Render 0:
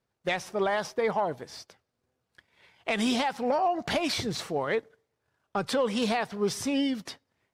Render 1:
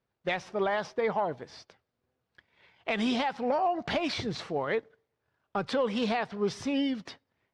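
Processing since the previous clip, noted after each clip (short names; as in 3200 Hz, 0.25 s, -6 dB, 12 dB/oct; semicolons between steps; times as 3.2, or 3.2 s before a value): LPF 4300 Hz 12 dB/oct; gain -1.5 dB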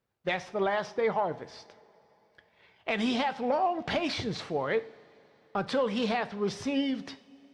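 two-slope reverb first 0.45 s, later 3.8 s, from -19 dB, DRR 12 dB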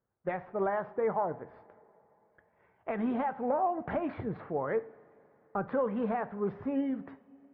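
LPF 1600 Hz 24 dB/oct; gain -2 dB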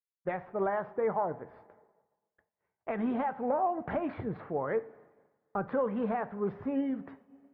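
expander -55 dBFS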